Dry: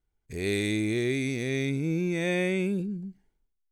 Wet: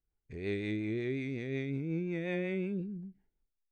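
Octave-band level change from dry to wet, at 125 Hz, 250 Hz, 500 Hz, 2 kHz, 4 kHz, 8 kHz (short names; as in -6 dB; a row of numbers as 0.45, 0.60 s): -7.0 dB, -7.0 dB, -7.0 dB, -9.5 dB, -14.0 dB, under -25 dB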